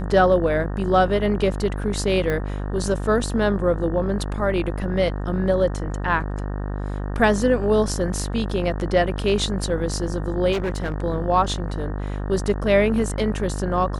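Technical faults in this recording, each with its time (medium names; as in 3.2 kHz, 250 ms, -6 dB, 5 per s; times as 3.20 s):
buzz 50 Hz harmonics 37 -27 dBFS
2.30 s: pop -13 dBFS
10.52–10.94 s: clipped -20.5 dBFS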